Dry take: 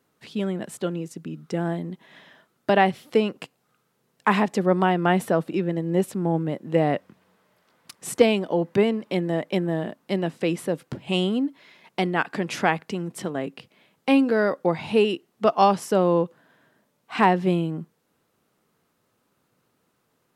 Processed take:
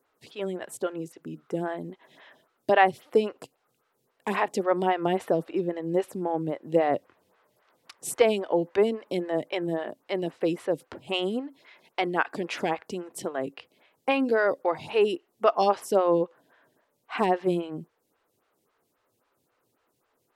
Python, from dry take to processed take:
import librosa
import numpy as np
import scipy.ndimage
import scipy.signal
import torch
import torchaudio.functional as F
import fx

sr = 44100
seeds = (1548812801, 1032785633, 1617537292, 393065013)

y = fx.peak_eq(x, sr, hz=190.0, db=-9.5, octaves=0.79)
y = fx.stagger_phaser(y, sr, hz=3.7)
y = y * librosa.db_to_amplitude(1.0)